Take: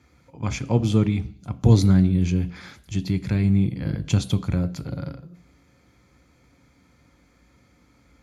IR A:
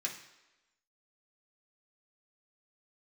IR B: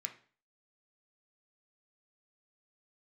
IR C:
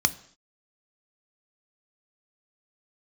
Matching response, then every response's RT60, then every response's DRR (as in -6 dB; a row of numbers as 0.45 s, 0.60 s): C; 1.0 s, 0.40 s, no single decay rate; -2.0 dB, 4.0 dB, 11.5 dB